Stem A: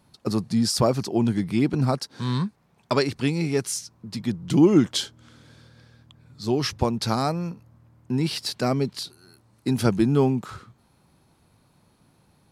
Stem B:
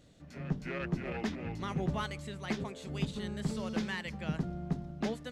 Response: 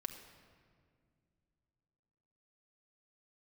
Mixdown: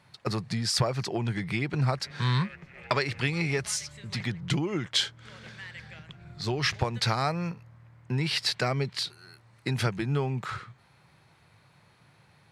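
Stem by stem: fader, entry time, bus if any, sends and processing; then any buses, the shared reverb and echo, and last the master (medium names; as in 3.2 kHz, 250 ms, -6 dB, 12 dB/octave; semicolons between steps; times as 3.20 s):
+1.5 dB, 0.00 s, no send, no echo send, high-pass 140 Hz 6 dB/octave; treble shelf 4.6 kHz -12 dB; compression 6:1, threshold -25 dBFS, peak gain reduction 12 dB
-4.5 dB, 1.70 s, muted 4.24–5.25 s, no send, echo send -15 dB, compression 6:1, threshold -42 dBFS, peak gain reduction 14.5 dB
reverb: none
echo: delay 168 ms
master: graphic EQ 125/250/2000/4000/8000 Hz +7/-10/+10/+4/+5 dB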